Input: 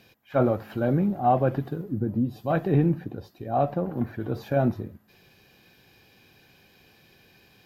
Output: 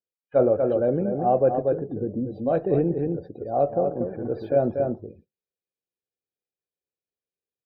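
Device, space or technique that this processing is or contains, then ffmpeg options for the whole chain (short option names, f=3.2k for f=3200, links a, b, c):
ducked delay: -filter_complex "[0:a]asplit=3[a][b][c];[b]adelay=238,volume=-3dB[d];[c]apad=whole_len=348156[e];[d][e]sidechaincompress=threshold=-25dB:ratio=8:attack=36:release=257[f];[a][f]amix=inputs=2:normalize=0,agate=range=-11dB:threshold=-49dB:ratio=16:detection=peak,afftdn=nr=32:nf=-47,equalizer=f=125:t=o:w=1:g=-5,equalizer=f=250:t=o:w=1:g=-3,equalizer=f=500:t=o:w=1:g=11,equalizer=f=1k:t=o:w=1:g=-7,equalizer=f=2k:t=o:w=1:g=-6,equalizer=f=8k:t=o:w=1:g=-4,volume=-1.5dB"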